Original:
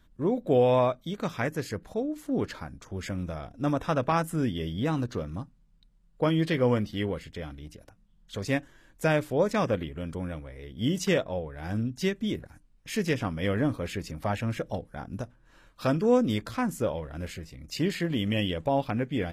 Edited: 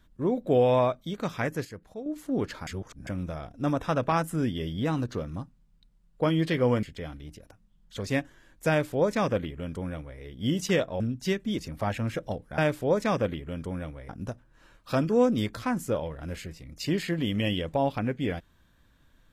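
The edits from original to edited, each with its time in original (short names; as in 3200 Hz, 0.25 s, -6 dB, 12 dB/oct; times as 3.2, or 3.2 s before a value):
1.65–2.06 gain -8.5 dB
2.67–3.07 reverse
6.83–7.21 cut
9.07–10.58 copy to 15.01
11.38–11.76 cut
12.34–14.01 cut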